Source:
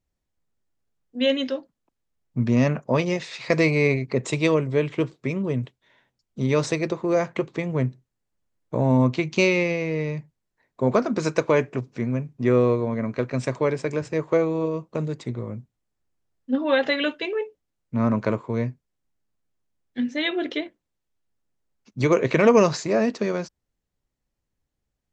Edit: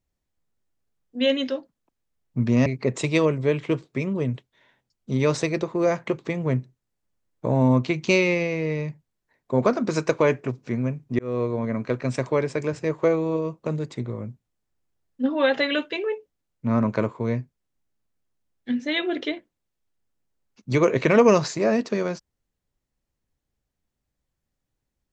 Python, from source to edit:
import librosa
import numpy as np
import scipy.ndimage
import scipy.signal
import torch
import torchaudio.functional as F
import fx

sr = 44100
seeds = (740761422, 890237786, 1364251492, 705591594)

y = fx.edit(x, sr, fx.cut(start_s=2.66, length_s=1.29),
    fx.fade_in_span(start_s=12.48, length_s=0.54, curve='qsin'), tone=tone)